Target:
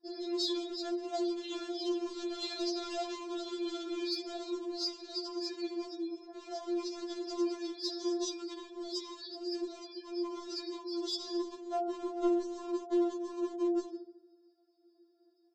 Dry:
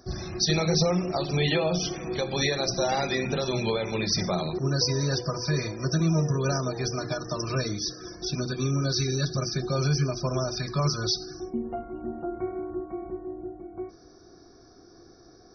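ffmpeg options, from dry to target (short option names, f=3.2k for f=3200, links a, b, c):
-af "agate=range=-23dB:threshold=-47dB:ratio=16:detection=peak,tiltshelf=f=850:g=9,aecho=1:1:75|150|225|300|375|450:0.158|0.0935|0.0552|0.0326|0.0192|0.0113,adynamicequalizer=threshold=0.01:dfrequency=390:dqfactor=7.5:tfrequency=390:tqfactor=7.5:attack=5:release=100:ratio=0.375:range=3.5:mode=boostabove:tftype=bell,alimiter=limit=-13dB:level=0:latency=1:release=26,acompressor=threshold=-29dB:ratio=8,afftfilt=real='re*between(b*sr/4096,250,5500)':imag='im*between(b*sr/4096,250,5500)':win_size=4096:overlap=0.75,aresample=16000,volume=32.5dB,asoftclip=hard,volume=-32.5dB,aresample=44100,aexciter=amount=3:drive=9.1:freq=3.1k,afftfilt=real='re*4*eq(mod(b,16),0)':imag='im*4*eq(mod(b,16),0)':win_size=2048:overlap=0.75"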